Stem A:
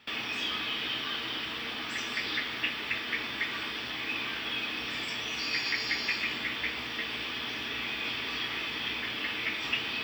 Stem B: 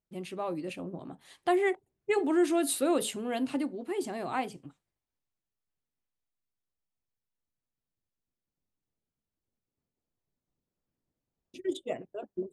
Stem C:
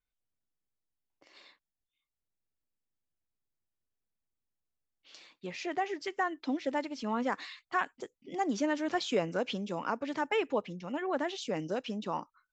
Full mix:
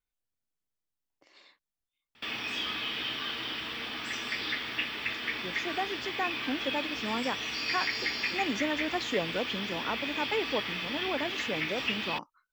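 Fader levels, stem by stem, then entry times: -1.0 dB, off, -1.0 dB; 2.15 s, off, 0.00 s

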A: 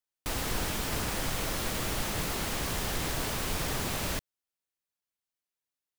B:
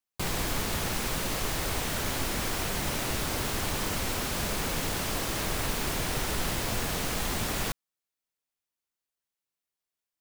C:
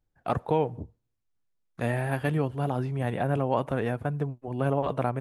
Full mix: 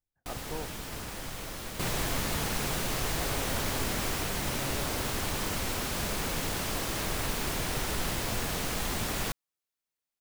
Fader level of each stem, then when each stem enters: -7.0, -1.5, -15.5 dB; 0.00, 1.60, 0.00 s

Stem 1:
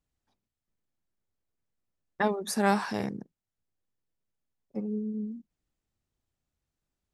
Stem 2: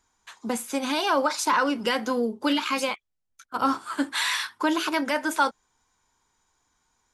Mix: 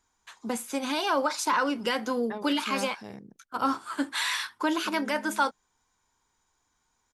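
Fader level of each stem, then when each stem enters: -11.0, -3.0 dB; 0.10, 0.00 s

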